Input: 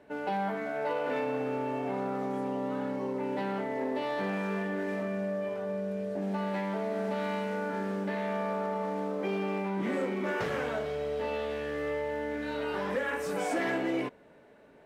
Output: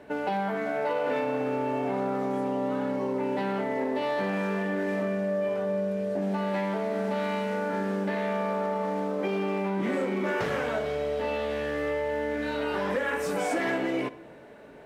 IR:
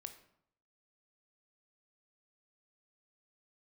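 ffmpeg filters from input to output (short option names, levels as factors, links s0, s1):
-filter_complex "[0:a]acompressor=threshold=0.0141:ratio=2,asplit=2[s0][s1];[1:a]atrim=start_sample=2205,asetrate=29988,aresample=44100[s2];[s1][s2]afir=irnorm=-1:irlink=0,volume=0.841[s3];[s0][s3]amix=inputs=2:normalize=0,volume=1.68"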